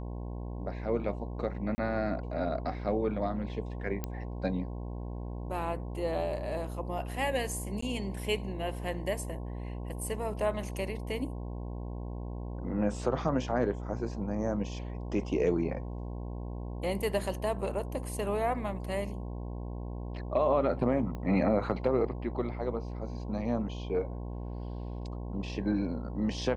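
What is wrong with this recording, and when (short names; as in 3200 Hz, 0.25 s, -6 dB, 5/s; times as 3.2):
buzz 60 Hz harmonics 18 -38 dBFS
1.75–1.78 gap 30 ms
4.04 pop -19 dBFS
7.81–7.82 gap 14 ms
21.15 pop -27 dBFS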